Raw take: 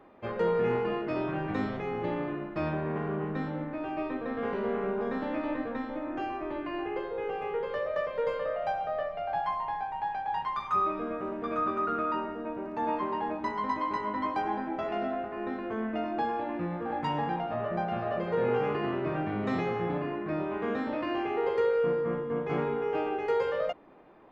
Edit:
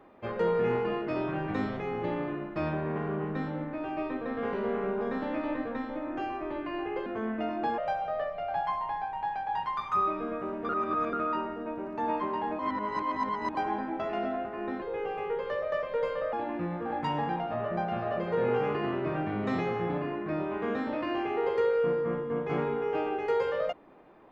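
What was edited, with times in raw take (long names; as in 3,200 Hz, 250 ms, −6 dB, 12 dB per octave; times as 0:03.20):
0:07.06–0:08.57: swap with 0:15.61–0:16.33
0:11.48–0:11.92: reverse
0:13.38–0:14.34: reverse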